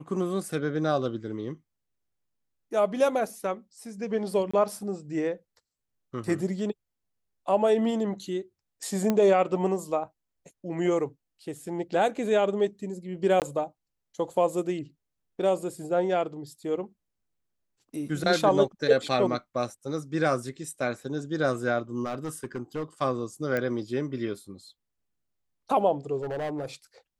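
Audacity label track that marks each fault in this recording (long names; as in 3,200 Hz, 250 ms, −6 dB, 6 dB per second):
4.510000	4.540000	drop-out 25 ms
9.100000	9.100000	click −12 dBFS
13.400000	13.420000	drop-out 18 ms
22.040000	22.830000	clipping −27 dBFS
23.570000	23.570000	click −16 dBFS
26.170000	26.660000	clipping −28 dBFS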